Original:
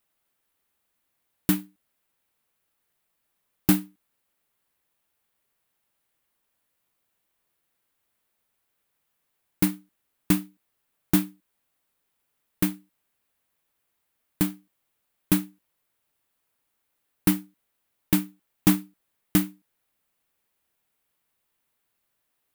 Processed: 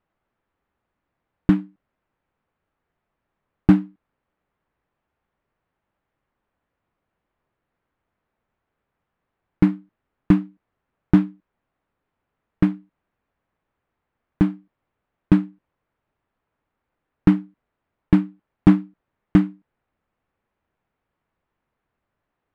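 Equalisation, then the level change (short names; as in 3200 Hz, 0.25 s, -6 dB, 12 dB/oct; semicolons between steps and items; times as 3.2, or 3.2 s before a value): LPF 1600 Hz 12 dB/oct; low shelf 170 Hz +6.5 dB; +5.0 dB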